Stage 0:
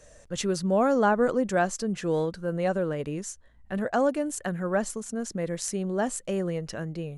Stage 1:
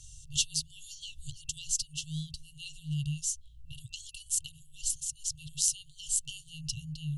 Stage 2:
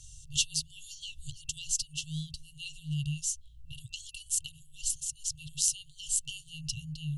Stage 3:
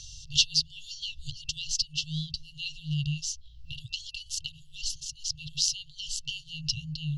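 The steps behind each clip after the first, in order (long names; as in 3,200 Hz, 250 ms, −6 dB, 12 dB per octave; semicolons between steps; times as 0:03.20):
brick-wall band-stop 160–2,700 Hz; level +6 dB
dynamic equaliser 2,500 Hz, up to +5 dB, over −58 dBFS, Q 3.5
high shelf with overshoot 6,700 Hz −12 dB, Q 3; one half of a high-frequency compander encoder only; level +3 dB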